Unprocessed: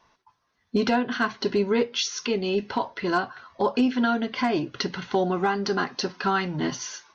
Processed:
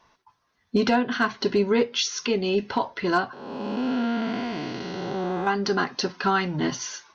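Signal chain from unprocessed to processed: 3.33–5.47 s: spectral blur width 470 ms; trim +1.5 dB

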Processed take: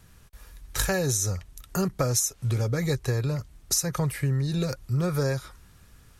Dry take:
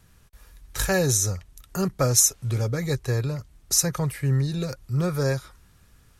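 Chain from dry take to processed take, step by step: compression 12:1, threshold -24 dBFS, peak gain reduction 11.5 dB; trim +2.5 dB

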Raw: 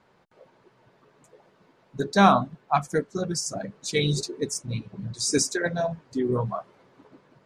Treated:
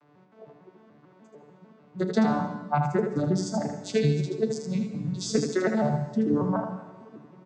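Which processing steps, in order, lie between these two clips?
vocoder on a broken chord major triad, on D3, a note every 149 ms; compression 5:1, threshold -29 dBFS, peak gain reduction 16 dB; early reflections 37 ms -16 dB, 79 ms -6 dB; on a send at -10.5 dB: reverberation, pre-delay 127 ms; on the sum: trim +7.5 dB

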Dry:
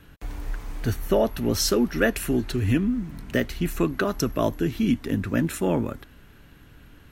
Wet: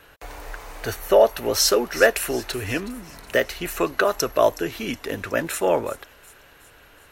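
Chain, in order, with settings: resonant low shelf 350 Hz -13.5 dB, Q 1.5; band-stop 3.3 kHz, Q 24; feedback echo behind a high-pass 369 ms, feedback 55%, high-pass 4.2 kHz, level -14 dB; trim +5.5 dB

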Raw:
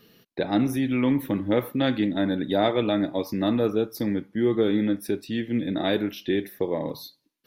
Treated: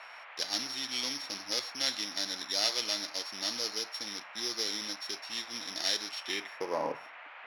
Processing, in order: sorted samples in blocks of 8 samples; band-pass sweep 4.1 kHz -> 450 Hz, 6.18–7.19 s; band noise 620–2500 Hz -56 dBFS; trim +7 dB

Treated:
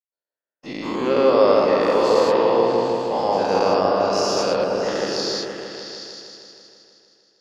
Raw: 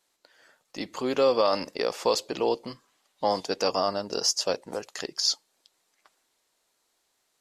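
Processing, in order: every event in the spectrogram widened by 240 ms; gate -43 dBFS, range -44 dB; FFT filter 1.3 kHz 0 dB, 2.8 kHz -2 dB, 9.1 kHz -15 dB; on a send: delay with an opening low-pass 157 ms, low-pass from 750 Hz, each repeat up 1 oct, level 0 dB; on the sum: trim -1 dB

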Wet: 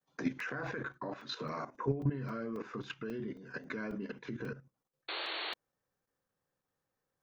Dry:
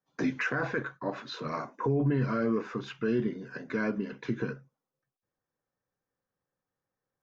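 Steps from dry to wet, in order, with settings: in parallel at 0 dB: compression 6:1, threshold -37 dBFS, peak gain reduction 13.5 dB; on the sum: hum notches 60/120/180/240/300/360 Hz; painted sound noise, 5.08–5.54 s, 300–4500 Hz -32 dBFS; level held to a coarse grid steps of 12 dB; crackling interface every 0.27 s, samples 128, zero, from 0.40 s; trim -3 dB

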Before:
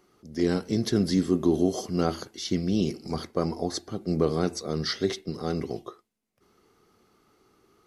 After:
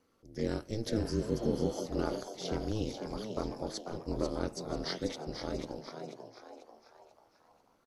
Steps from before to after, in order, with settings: ring modulator 110 Hz; frequency-shifting echo 491 ms, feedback 42%, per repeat +110 Hz, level -7 dB; spectral replace 1.07–1.72 s, 880–4500 Hz both; trim -6 dB

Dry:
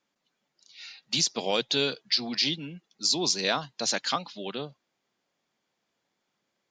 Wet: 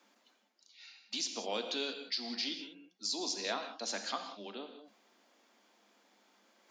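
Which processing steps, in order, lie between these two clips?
rippled Chebyshev high-pass 200 Hz, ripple 3 dB; gated-style reverb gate 210 ms flat, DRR 6 dB; reverse; upward compressor, threshold -42 dBFS; reverse; trim -8.5 dB

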